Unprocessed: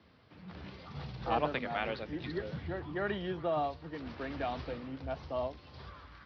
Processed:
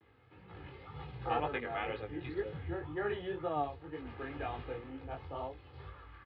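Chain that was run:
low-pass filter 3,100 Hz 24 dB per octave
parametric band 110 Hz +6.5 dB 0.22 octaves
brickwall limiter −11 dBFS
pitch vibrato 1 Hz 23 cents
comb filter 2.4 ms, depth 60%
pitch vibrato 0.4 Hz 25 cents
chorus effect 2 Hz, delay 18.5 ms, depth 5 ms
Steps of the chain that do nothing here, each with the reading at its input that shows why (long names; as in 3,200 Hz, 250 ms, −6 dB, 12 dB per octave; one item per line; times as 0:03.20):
brickwall limiter −11 dBFS: peak of its input −17.0 dBFS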